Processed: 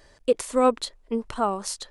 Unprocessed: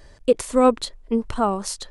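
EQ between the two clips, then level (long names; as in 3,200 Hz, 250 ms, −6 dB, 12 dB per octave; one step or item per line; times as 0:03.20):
low-shelf EQ 220 Hz −9 dB
−2.0 dB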